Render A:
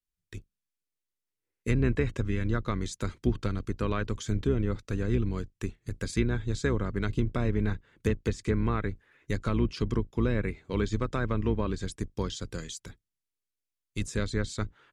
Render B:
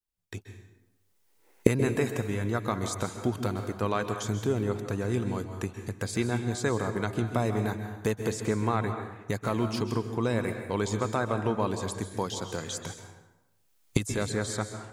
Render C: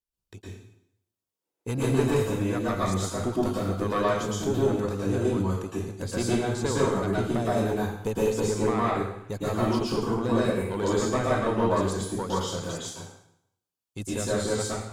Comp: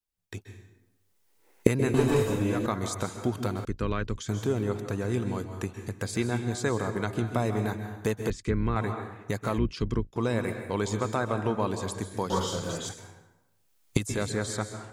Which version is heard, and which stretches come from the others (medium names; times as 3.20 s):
B
1.94–2.66 s: from C
3.65–4.29 s: from A
8.30–8.76 s: from A
9.58–10.16 s: from A
12.30–12.89 s: from C